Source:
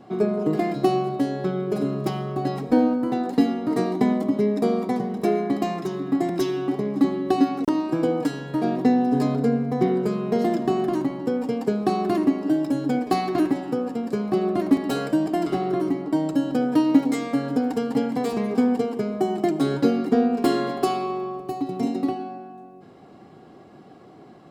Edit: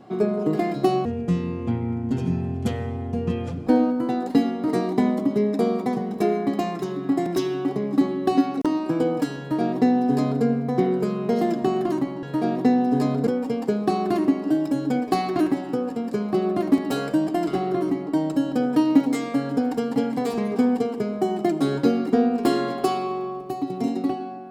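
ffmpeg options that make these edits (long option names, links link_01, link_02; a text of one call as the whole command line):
ffmpeg -i in.wav -filter_complex "[0:a]asplit=5[link_01][link_02][link_03][link_04][link_05];[link_01]atrim=end=1.054[link_06];[link_02]atrim=start=1.05:end=2.7,asetpts=PTS-STARTPTS,asetrate=27783,aresample=44100[link_07];[link_03]atrim=start=2.696:end=11.262[link_08];[link_04]atrim=start=8.428:end=9.472[link_09];[link_05]atrim=start=11.258[link_10];[link_06][link_07]acrossfade=duration=0.004:curve1=hsin:curve2=hsin[link_11];[link_11][link_08]acrossfade=duration=0.004:curve1=hsin:curve2=hsin[link_12];[link_12][link_09]acrossfade=duration=0.004:curve1=hsin:curve2=hsin[link_13];[link_13][link_10]acrossfade=duration=0.004:curve1=hsin:curve2=hsin" out.wav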